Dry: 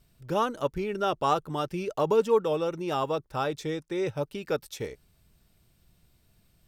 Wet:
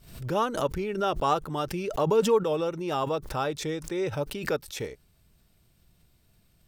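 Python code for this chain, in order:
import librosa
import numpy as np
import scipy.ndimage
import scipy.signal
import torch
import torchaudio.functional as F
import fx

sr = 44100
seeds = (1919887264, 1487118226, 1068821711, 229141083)

y = fx.pre_swell(x, sr, db_per_s=91.0)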